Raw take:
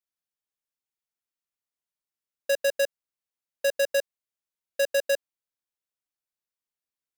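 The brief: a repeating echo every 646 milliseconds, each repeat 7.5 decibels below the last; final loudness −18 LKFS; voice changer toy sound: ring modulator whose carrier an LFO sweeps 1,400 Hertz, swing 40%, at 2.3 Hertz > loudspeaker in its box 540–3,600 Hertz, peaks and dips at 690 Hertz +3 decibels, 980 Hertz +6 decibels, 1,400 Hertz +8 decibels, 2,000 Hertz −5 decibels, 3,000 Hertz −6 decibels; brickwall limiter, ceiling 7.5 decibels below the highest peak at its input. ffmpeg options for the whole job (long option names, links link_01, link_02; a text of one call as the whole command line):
ffmpeg -i in.wav -af "alimiter=level_in=4.5dB:limit=-24dB:level=0:latency=1,volume=-4.5dB,aecho=1:1:646|1292|1938|2584|3230:0.422|0.177|0.0744|0.0312|0.0131,aeval=exprs='val(0)*sin(2*PI*1400*n/s+1400*0.4/2.3*sin(2*PI*2.3*n/s))':channel_layout=same,highpass=540,equalizer=frequency=690:width_type=q:width=4:gain=3,equalizer=frequency=980:width_type=q:width=4:gain=6,equalizer=frequency=1400:width_type=q:width=4:gain=8,equalizer=frequency=2000:width_type=q:width=4:gain=-5,equalizer=frequency=3000:width_type=q:width=4:gain=-6,lowpass=frequency=3600:width=0.5412,lowpass=frequency=3600:width=1.3066,volume=17.5dB" out.wav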